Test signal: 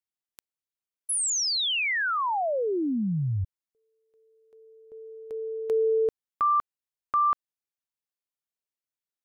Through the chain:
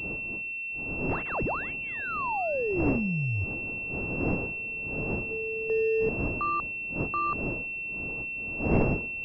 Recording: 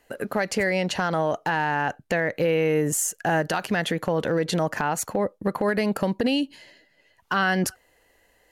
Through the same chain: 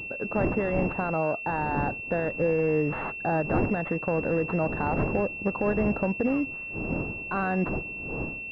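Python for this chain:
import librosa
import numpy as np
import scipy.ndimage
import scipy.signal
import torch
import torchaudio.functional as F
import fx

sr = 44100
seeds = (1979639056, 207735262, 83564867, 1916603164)

y = fx.dmg_wind(x, sr, seeds[0], corner_hz=380.0, level_db=-32.0)
y = fx.pwm(y, sr, carrier_hz=2700.0)
y = y * 10.0 ** (-2.5 / 20.0)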